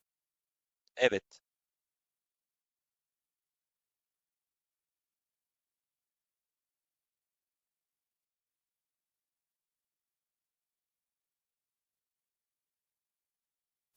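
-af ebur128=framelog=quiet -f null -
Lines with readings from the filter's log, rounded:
Integrated loudness:
  I:         -31.3 LUFS
  Threshold: -43.4 LUFS
Loudness range:
  LRA:         8.5 LU
  Threshold: -59.4 LUFS
  LRA low:   -47.6 LUFS
  LRA high:  -39.1 LUFS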